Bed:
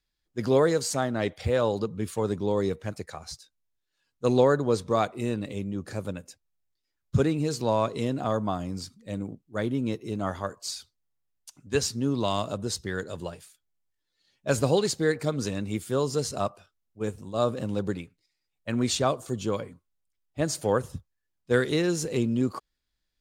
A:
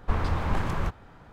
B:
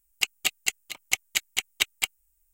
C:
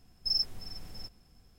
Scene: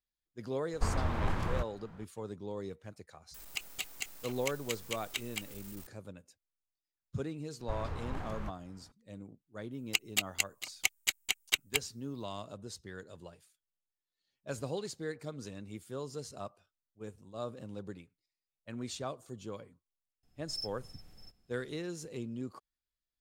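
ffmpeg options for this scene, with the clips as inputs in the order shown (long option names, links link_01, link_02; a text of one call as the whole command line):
ffmpeg -i bed.wav -i cue0.wav -i cue1.wav -i cue2.wav -filter_complex "[1:a]asplit=2[link_01][link_02];[2:a]asplit=2[link_03][link_04];[0:a]volume=-14.5dB[link_05];[link_03]aeval=exprs='val(0)+0.5*0.0316*sgn(val(0))':channel_layout=same[link_06];[3:a]bandreject=frequency=1000:width=13[link_07];[link_01]atrim=end=1.32,asetpts=PTS-STARTPTS,volume=-5.5dB,afade=type=in:duration=0.004:curve=hsin,afade=type=out:start_time=1.316:duration=0.004:curve=hsin,adelay=730[link_08];[link_06]atrim=end=2.53,asetpts=PTS-STARTPTS,volume=-14dB,afade=type=in:duration=0.004:curve=hsin,afade=type=out:start_time=2.526:duration=0.004:curve=hsin,adelay=3340[link_09];[link_02]atrim=end=1.32,asetpts=PTS-STARTPTS,volume=-13dB,afade=type=in:duration=0.004:curve=hsin,afade=type=out:start_time=1.316:duration=0.004:curve=hsin,adelay=7600[link_10];[link_04]atrim=end=2.53,asetpts=PTS-STARTPTS,volume=-5dB,afade=type=in:duration=0.004:curve=hsin,afade=type=out:start_time=2.526:duration=0.004:curve=hsin,adelay=9720[link_11];[link_07]atrim=end=1.58,asetpts=PTS-STARTPTS,volume=-11dB,afade=type=in:duration=0.004:curve=hsin,afade=type=out:start_time=1.576:duration=0.004:curve=hsin,adelay=20230[link_12];[link_05][link_08][link_09][link_10][link_11][link_12]amix=inputs=6:normalize=0" out.wav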